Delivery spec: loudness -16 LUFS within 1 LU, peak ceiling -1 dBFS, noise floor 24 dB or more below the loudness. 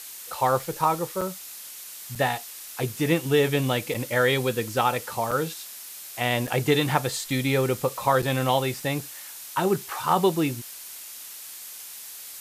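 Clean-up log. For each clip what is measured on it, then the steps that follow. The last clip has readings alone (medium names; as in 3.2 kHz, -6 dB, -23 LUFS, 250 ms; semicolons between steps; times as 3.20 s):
dropouts 6; longest dropout 5.4 ms; noise floor -41 dBFS; noise floor target -49 dBFS; loudness -25.0 LUFS; peak level -6.5 dBFS; loudness target -16.0 LUFS
-> interpolate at 1.21/2.15/3.94/5.31/6.47/8.22 s, 5.4 ms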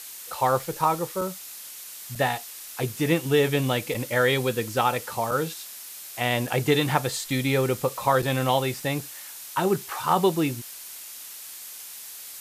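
dropouts 0; noise floor -41 dBFS; noise floor target -49 dBFS
-> noise reduction 8 dB, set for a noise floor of -41 dBFS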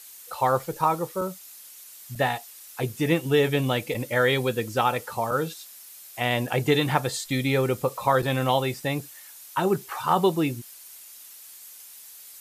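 noise floor -46 dBFS; noise floor target -50 dBFS
-> noise reduction 6 dB, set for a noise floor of -46 dBFS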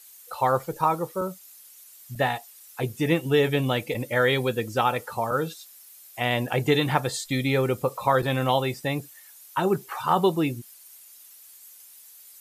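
noise floor -50 dBFS; loudness -25.5 LUFS; peak level -6.5 dBFS; loudness target -16.0 LUFS
-> trim +9.5 dB; peak limiter -1 dBFS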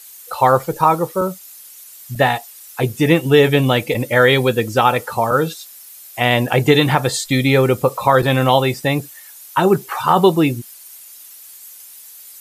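loudness -16.0 LUFS; peak level -1.0 dBFS; noise floor -40 dBFS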